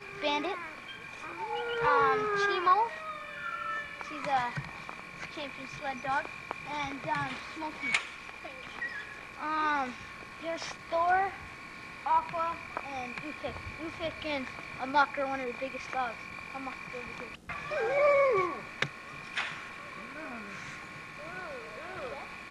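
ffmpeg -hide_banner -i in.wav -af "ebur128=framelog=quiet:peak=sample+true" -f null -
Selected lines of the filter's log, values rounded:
Integrated loudness:
  I:         -33.0 LUFS
  Threshold: -43.2 LUFS
Loudness range:
  LRA:         6.3 LU
  Threshold: -53.0 LUFS
  LRA low:   -36.2 LUFS
  LRA high:  -29.9 LUFS
Sample peak:
  Peak:      -12.4 dBFS
True peak:
  Peak:      -12.4 dBFS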